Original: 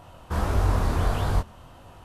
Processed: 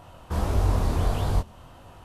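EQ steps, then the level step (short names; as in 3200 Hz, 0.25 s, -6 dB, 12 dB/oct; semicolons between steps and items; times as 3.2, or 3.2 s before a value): dynamic EQ 1500 Hz, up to -6 dB, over -47 dBFS, Q 1.3; 0.0 dB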